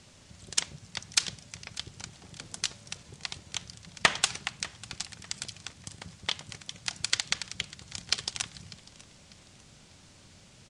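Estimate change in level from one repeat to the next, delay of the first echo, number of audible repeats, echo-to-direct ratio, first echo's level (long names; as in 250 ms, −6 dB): −9.0 dB, 596 ms, 2, −20.0 dB, −20.5 dB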